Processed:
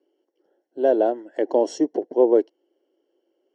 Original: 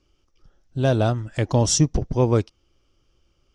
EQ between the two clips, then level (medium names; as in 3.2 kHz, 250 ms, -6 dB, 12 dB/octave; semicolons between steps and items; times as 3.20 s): boxcar filter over 36 samples; steep high-pass 330 Hz 36 dB/octave; +8.0 dB